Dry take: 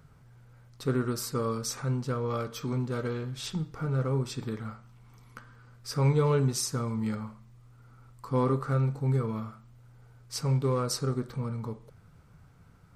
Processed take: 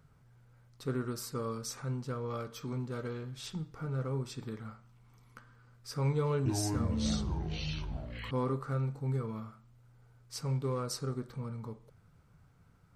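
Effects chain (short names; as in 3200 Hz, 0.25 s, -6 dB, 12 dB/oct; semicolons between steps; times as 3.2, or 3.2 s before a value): 6.16–8.31 echoes that change speed 0.293 s, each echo -6 st, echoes 3; gain -6.5 dB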